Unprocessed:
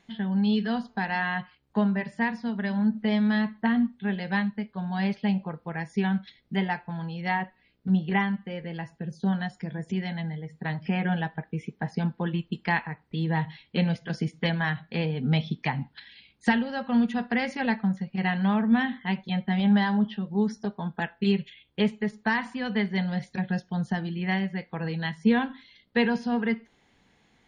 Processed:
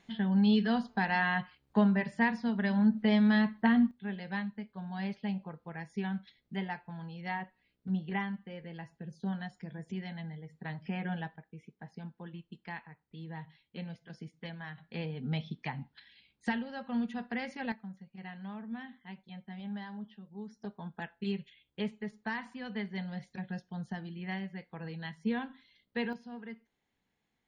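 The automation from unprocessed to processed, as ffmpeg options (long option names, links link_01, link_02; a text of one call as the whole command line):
ffmpeg -i in.wav -af "asetnsamples=nb_out_samples=441:pad=0,asendcmd='3.91 volume volume -9.5dB;11.36 volume volume -17dB;14.78 volume volume -10dB;17.72 volume volume -19dB;20.62 volume volume -11dB;26.13 volume volume -18.5dB',volume=-1.5dB" out.wav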